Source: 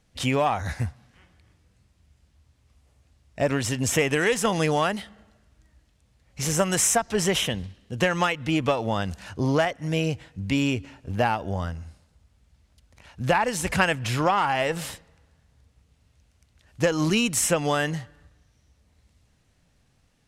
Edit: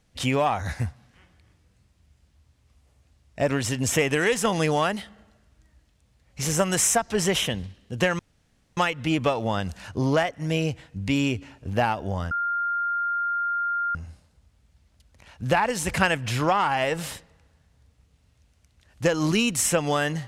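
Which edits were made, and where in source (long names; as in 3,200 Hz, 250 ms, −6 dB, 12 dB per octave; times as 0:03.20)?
0:08.19: splice in room tone 0.58 s
0:11.73: insert tone 1,400 Hz −23 dBFS 1.64 s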